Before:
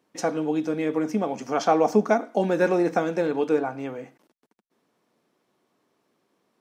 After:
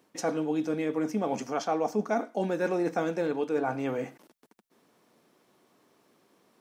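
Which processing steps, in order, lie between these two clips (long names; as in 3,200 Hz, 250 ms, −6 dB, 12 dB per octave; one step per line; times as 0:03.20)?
high-shelf EQ 7,600 Hz +4.5 dB
reversed playback
downward compressor 4 to 1, threshold −33 dBFS, peak gain reduction 16.5 dB
reversed playback
level +5.5 dB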